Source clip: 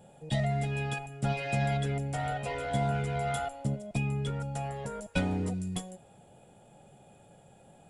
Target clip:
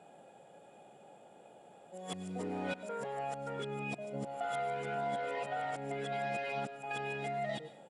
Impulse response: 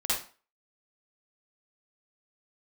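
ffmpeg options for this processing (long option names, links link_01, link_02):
-filter_complex "[0:a]areverse,highpass=320,highshelf=frequency=4300:gain=-10.5,acompressor=threshold=-38dB:ratio=3,asplit=2[link_01][link_02];[1:a]atrim=start_sample=2205,asetrate=22932,aresample=44100[link_03];[link_02][link_03]afir=irnorm=-1:irlink=0,volume=-26.5dB[link_04];[link_01][link_04]amix=inputs=2:normalize=0,aresample=22050,aresample=44100,volume=2dB"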